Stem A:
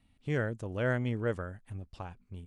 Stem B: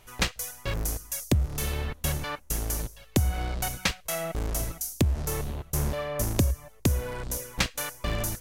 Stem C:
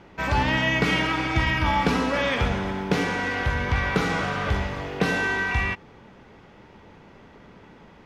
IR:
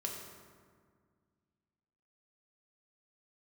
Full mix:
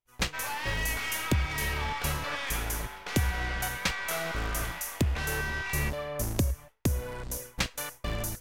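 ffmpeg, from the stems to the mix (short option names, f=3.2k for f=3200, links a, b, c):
-filter_complex "[0:a]alimiter=level_in=5.5dB:limit=-24dB:level=0:latency=1,volume=-5.5dB,volume=-15.5dB[a];[1:a]volume=-3.5dB[b];[2:a]highpass=960,aeval=exprs='(tanh(20*val(0)+0.45)-tanh(0.45))/20':c=same,adelay=150,volume=-4dB[c];[a][b][c]amix=inputs=3:normalize=0,agate=range=-33dB:threshold=-40dB:ratio=3:detection=peak"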